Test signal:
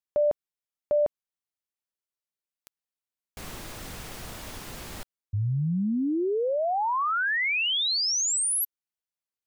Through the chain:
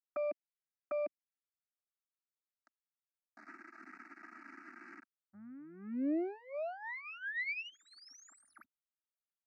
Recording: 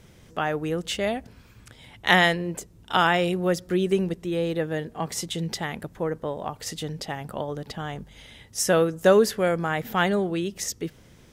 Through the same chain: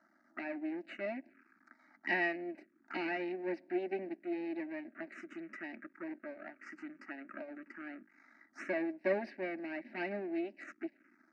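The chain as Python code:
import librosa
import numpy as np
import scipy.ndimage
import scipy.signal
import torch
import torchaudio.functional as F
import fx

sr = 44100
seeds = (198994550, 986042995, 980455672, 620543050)

y = x + 0.52 * np.pad(x, (int(3.1 * sr / 1000.0), 0))[:len(x)]
y = np.maximum(y, 0.0)
y = fx.cabinet(y, sr, low_hz=250.0, low_slope=24, high_hz=3600.0, hz=(450.0, 750.0, 1200.0, 3200.0), db=(-9, -8, 5, -9))
y = fx.fixed_phaser(y, sr, hz=690.0, stages=8)
y = fx.env_phaser(y, sr, low_hz=410.0, high_hz=1300.0, full_db=-36.5)
y = y * librosa.db_to_amplitude(-1.0)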